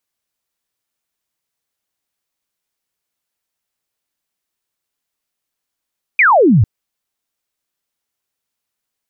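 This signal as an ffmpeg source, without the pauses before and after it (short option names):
-f lavfi -i "aevalsrc='0.473*clip(t/0.002,0,1)*clip((0.45-t)/0.002,0,1)*sin(2*PI*2500*0.45/log(91/2500)*(exp(log(91/2500)*t/0.45)-1))':d=0.45:s=44100"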